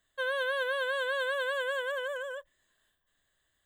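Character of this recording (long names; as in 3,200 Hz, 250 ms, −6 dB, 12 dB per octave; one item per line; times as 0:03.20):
background noise floor −78 dBFS
spectral slope −5.0 dB per octave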